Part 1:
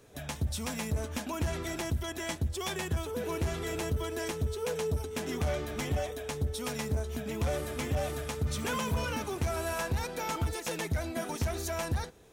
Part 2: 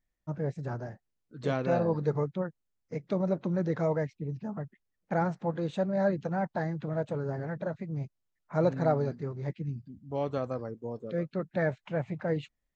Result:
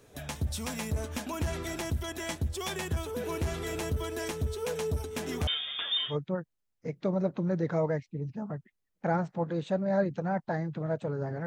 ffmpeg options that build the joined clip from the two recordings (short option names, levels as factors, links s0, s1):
-filter_complex "[0:a]asettb=1/sr,asplit=3[s0][s1][s2];[s0]atrim=end=5.474[s3];[s1]atrim=start=5.47:end=6.17,asetpts=PTS-STARTPTS,afade=t=in:d=0.004:c=qsin,afade=t=out:st=0.696:d=0.004:c=qsin,lowpass=f=3100:t=q:w=0.5098,lowpass=f=3100:t=q:w=0.6013,lowpass=f=3100:t=q:w=0.9,lowpass=f=3100:t=q:w=2.563,afreqshift=-3700[s4];[s2]atrim=start=6.166[s5];[s3][s4]acrossfade=d=0.004:c1=hsin:c2=qsin[s6];[s6][s5]acrossfade=d=0.004:c1=qsin:c2=hsin,apad=whole_dur=11.46,atrim=end=11.46,atrim=end=6.17,asetpts=PTS-STARTPTS[s7];[1:a]atrim=start=2.14:end=7.53,asetpts=PTS-STARTPTS[s8];[s7][s8]acrossfade=d=0.1:c1=tri:c2=tri"